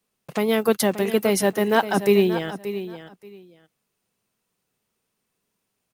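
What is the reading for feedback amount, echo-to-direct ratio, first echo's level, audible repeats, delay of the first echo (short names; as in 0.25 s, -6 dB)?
18%, -12.0 dB, -12.0 dB, 2, 0.579 s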